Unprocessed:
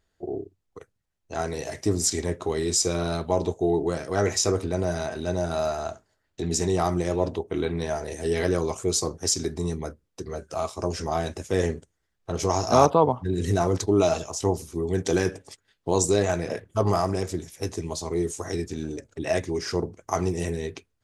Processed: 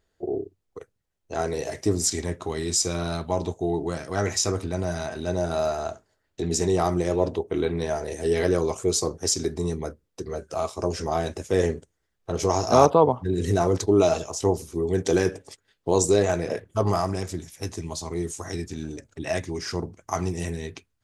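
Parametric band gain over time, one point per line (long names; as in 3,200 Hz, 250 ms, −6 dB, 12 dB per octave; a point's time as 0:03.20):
parametric band 450 Hz 0.93 octaves
0:01.71 +4.5 dB
0:02.33 −4.5 dB
0:04.99 −4.5 dB
0:05.44 +3 dB
0:16.54 +3 dB
0:17.23 −5.5 dB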